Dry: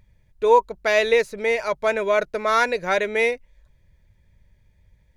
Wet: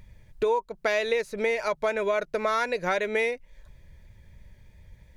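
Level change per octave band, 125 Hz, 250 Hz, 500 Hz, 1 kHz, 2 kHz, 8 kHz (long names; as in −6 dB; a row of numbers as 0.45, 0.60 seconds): −0.5, −3.0, −6.0, −7.5, −6.0, −6.0 decibels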